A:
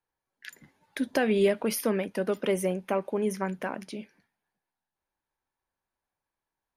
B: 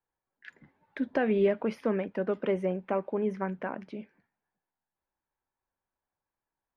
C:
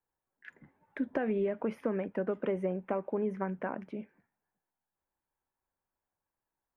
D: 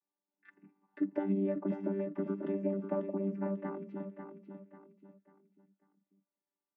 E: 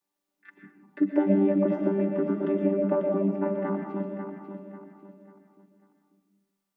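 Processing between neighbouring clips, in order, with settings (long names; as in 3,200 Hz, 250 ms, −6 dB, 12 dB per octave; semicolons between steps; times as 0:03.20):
low-pass filter 2,000 Hz 12 dB per octave; level −1.5 dB
parametric band 4,500 Hz −12.5 dB 1.1 octaves; downward compressor 10 to 1, threshold −27 dBFS, peak gain reduction 8 dB
channel vocoder with a chord as carrier bare fifth, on G3; on a send: repeating echo 543 ms, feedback 36%, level −7.5 dB
convolution reverb RT60 0.75 s, pre-delay 80 ms, DRR 3 dB; level +8.5 dB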